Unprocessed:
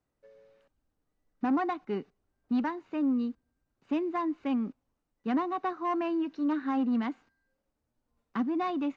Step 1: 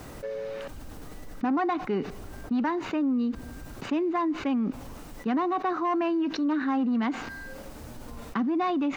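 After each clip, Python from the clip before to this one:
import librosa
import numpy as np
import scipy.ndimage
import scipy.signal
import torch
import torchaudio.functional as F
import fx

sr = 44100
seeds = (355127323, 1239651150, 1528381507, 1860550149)

y = fx.env_flatten(x, sr, amount_pct=70)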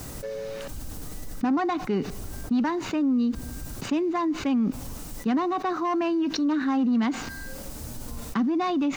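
y = fx.bass_treble(x, sr, bass_db=6, treble_db=12)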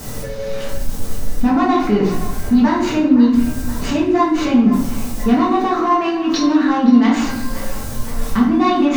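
y = fx.echo_banded(x, sr, ms=520, feedback_pct=70, hz=1600.0, wet_db=-12)
y = fx.room_shoebox(y, sr, seeds[0], volume_m3=150.0, walls='mixed', distance_m=1.6)
y = y * librosa.db_to_amplitude(4.0)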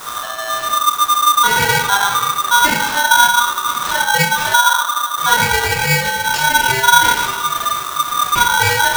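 y = fx.spec_erase(x, sr, start_s=4.55, length_s=0.62, low_hz=710.0, high_hz=11000.0)
y = y * np.sign(np.sin(2.0 * np.pi * 1200.0 * np.arange(len(y)) / sr))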